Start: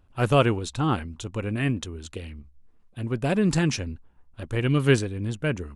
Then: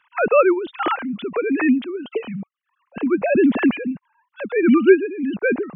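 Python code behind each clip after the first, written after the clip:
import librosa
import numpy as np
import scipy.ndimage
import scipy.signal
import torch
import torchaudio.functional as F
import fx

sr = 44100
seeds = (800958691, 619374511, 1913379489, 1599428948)

y = fx.sine_speech(x, sr)
y = fx.low_shelf(y, sr, hz=390.0, db=5.0)
y = fx.band_squash(y, sr, depth_pct=40)
y = y * librosa.db_to_amplitude(4.5)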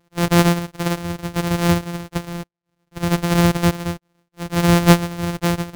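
y = np.r_[np.sort(x[:len(x) // 256 * 256].reshape(-1, 256), axis=1).ravel(), x[len(x) // 256 * 256:]]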